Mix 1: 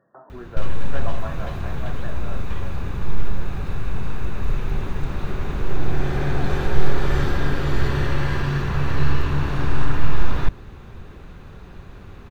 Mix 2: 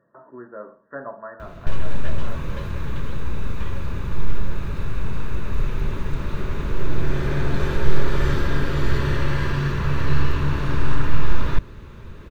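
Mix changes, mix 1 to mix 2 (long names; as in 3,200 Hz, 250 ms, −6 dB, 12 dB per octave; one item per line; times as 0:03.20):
background: entry +1.10 s
master: add Butterworth band-reject 760 Hz, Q 5.4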